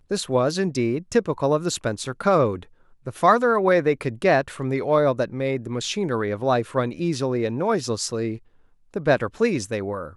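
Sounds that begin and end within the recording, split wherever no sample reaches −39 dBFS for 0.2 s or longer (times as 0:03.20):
0:03.06–0:08.38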